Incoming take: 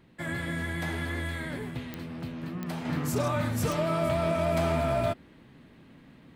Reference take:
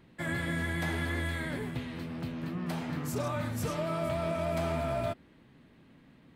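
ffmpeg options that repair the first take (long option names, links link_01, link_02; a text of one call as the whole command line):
ffmpeg -i in.wav -af "adeclick=threshold=4,asetnsamples=nb_out_samples=441:pad=0,asendcmd='2.85 volume volume -5dB',volume=0dB" out.wav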